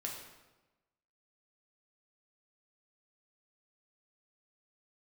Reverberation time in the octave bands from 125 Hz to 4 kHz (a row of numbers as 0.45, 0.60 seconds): 1.2, 1.2, 1.1, 1.1, 0.95, 0.85 seconds